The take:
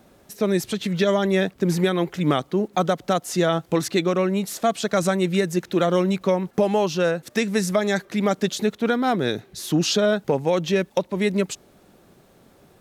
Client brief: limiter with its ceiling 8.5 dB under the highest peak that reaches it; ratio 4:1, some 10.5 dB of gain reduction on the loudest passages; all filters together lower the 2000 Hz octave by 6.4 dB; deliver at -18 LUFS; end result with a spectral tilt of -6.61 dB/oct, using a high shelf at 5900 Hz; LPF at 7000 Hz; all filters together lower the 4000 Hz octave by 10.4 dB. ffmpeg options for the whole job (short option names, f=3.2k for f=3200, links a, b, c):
-af "lowpass=7k,equalizer=f=2k:t=o:g=-6,equalizer=f=4k:t=o:g=-8.5,highshelf=f=5.9k:g=-6.5,acompressor=threshold=-29dB:ratio=4,volume=16.5dB,alimiter=limit=-8dB:level=0:latency=1"